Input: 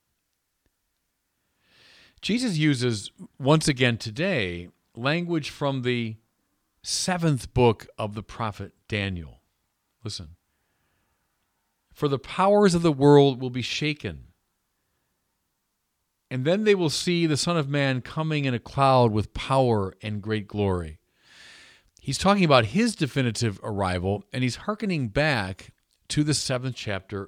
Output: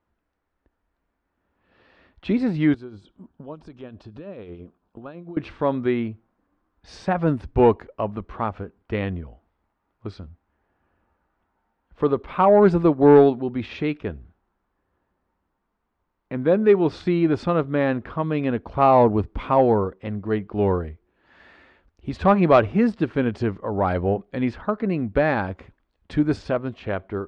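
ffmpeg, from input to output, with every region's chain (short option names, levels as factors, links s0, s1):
-filter_complex "[0:a]asettb=1/sr,asplit=3[s0][s1][s2];[s0]atrim=end=2.744[s3];[s1]atrim=start=2.74:end=5.37,asetpts=PTS-STARTPTS,afade=t=in:d=0.004:c=qsin,afade=t=out:st=2.626:d=0.004:c=qsin,equalizer=f=2000:w=4.5:g=-14,acompressor=threshold=0.0158:ratio=6:attack=3.2:release=140:knee=1:detection=peak,acrossover=split=2300[s4][s5];[s4]aeval=exprs='val(0)*(1-0.5/2+0.5/2*cos(2*PI*9*n/s))':c=same[s6];[s5]aeval=exprs='val(0)*(1-0.5/2-0.5/2*cos(2*PI*9*n/s))':c=same[s7];[s6][s7]amix=inputs=2:normalize=0[s8];[s2]atrim=start=5.366[s9];[s3][s8]acrossfade=d=0.004:c1=hsin:c2=qsin[s10];[s10][s9]acrossfade=d=0.004:c1=qsin:c2=hsin,lowpass=1300,equalizer=f=130:w=2.1:g=-10,acontrast=84,volume=0.841"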